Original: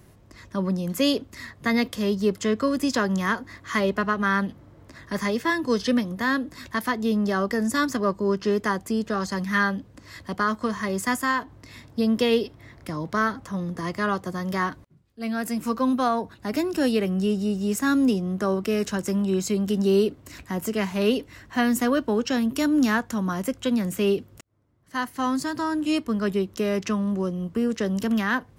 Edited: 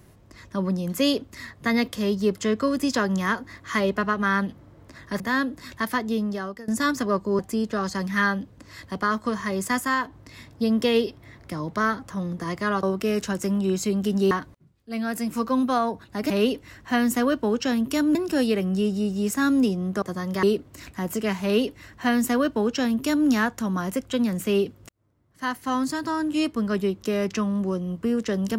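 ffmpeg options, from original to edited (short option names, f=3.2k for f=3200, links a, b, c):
-filter_complex "[0:a]asplit=10[a][b][c][d][e][f][g][h][i][j];[a]atrim=end=5.202[k];[b]atrim=start=6.138:end=7.62,asetpts=PTS-STARTPTS,afade=t=out:st=0.812:d=0.67:silence=0.0944061[l];[c]atrim=start=7.62:end=8.332,asetpts=PTS-STARTPTS,afade=t=in:d=0.004:c=hsin:silence=0.0944061[m];[d]atrim=start=8.758:end=14.202[n];[e]atrim=start=18.468:end=19.952[o];[f]atrim=start=14.608:end=16.602[p];[g]atrim=start=20.948:end=22.802[q];[h]atrim=start=16.598:end=18.472[r];[i]atrim=start=14.198:end=14.612[s];[j]atrim=start=19.948[t];[l][m]concat=n=2:v=0:a=1[u];[k][u]acrossfade=d=0.004:c1=hsin:c2=hsin[v];[v][n]acrossfade=d=0.004:c1=hsin:c2=hsin[w];[w][o]acrossfade=d=0.004:c1=hsin:c2=hsin[x];[x][p]acrossfade=d=0.004:c1=hsin:c2=hsin[y];[y][q]acrossfade=d=0.004:c1=hsin:c2=hsin[z];[z][r]acrossfade=d=0.004:c1=hsin:c2=hsin[aa];[aa][s]acrossfade=d=0.004:c1=hsin:c2=hsin[ab];[ab][t]acrossfade=d=0.004:c1=hsin:c2=hsin"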